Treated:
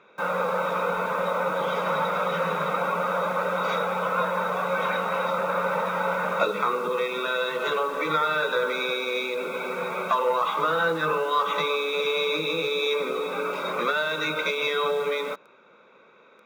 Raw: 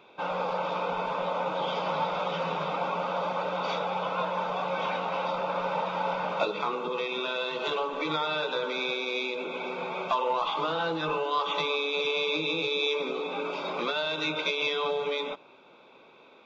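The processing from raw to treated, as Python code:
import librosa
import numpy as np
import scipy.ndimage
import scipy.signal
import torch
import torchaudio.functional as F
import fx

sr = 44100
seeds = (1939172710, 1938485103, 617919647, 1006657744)

p1 = fx.curve_eq(x, sr, hz=(140.0, 240.0, 500.0, 790.0, 1300.0, 1900.0, 2900.0, 4300.0, 6800.0, 10000.0), db=(0, -9, 9, 1, 14, 14, 1, -3, 11, -16))
p2 = fx.quant_dither(p1, sr, seeds[0], bits=6, dither='none')
p3 = p1 + F.gain(torch.from_numpy(p2), -4.5).numpy()
p4 = fx.small_body(p3, sr, hz=(210.0, 3800.0), ring_ms=50, db=18)
y = F.gain(torch.from_numpy(p4), -8.5).numpy()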